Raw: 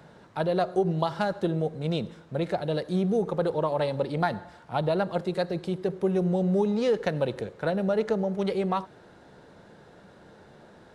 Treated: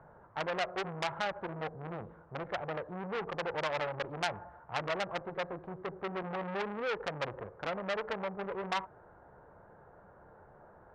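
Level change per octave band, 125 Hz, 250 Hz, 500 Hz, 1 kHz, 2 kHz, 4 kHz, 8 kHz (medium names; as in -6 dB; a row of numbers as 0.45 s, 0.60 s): -15.0 dB, -16.0 dB, -11.0 dB, -5.0 dB, 0.0 dB, -2.0 dB, no reading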